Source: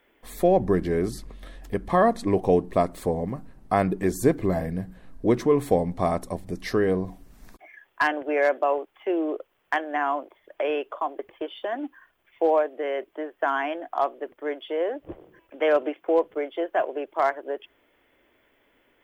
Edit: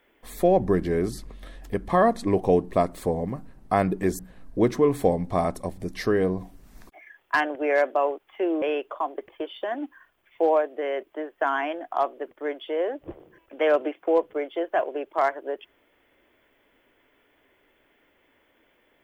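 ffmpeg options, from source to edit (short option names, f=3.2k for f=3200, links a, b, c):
-filter_complex "[0:a]asplit=3[a][b][c];[a]atrim=end=4.192[d];[b]atrim=start=4.858:end=9.292[e];[c]atrim=start=10.628[f];[d][e]acrossfade=d=0.004:c1=hsin:c2=hsin[g];[g][f]acrossfade=d=0.004:c1=hsin:c2=hsin"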